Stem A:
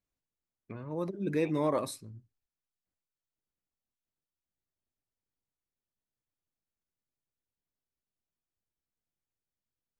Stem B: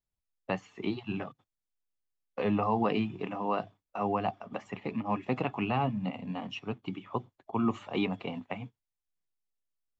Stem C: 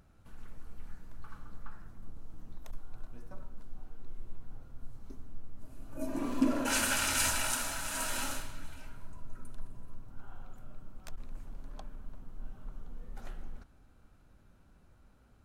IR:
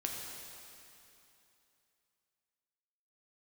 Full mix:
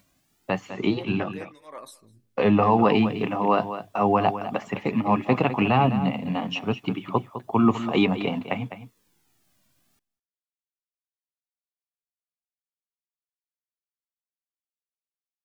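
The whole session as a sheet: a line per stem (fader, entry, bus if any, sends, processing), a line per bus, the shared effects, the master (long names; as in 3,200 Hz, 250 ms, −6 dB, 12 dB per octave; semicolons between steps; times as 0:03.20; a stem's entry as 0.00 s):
−2.5 dB, 0.00 s, no send, echo send −23.5 dB, upward compression, threshold −36 dBFS; through-zero flanger with one copy inverted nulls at 0.31 Hz, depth 2.4 ms
−2.5 dB, 0.00 s, no send, echo send −11.5 dB, automatic gain control gain up to 12.5 dB
muted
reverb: not used
echo: single-tap delay 205 ms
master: no processing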